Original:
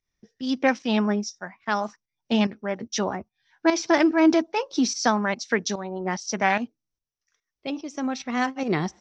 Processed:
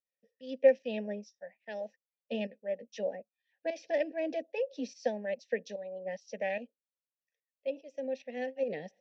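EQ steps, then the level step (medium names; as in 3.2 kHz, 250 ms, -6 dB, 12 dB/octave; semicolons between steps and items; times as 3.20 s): vowel filter e; dynamic bell 260 Hz, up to +6 dB, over -46 dBFS, Q 0.81; static phaser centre 350 Hz, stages 6; +1.5 dB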